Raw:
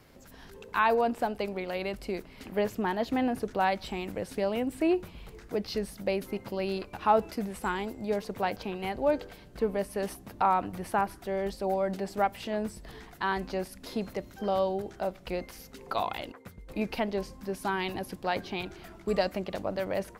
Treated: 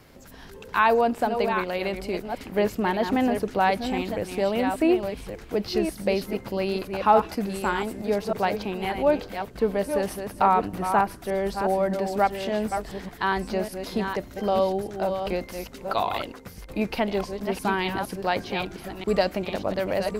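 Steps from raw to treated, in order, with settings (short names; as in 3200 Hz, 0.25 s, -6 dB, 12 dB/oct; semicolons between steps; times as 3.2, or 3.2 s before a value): reverse delay 0.595 s, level -7 dB; gain +5 dB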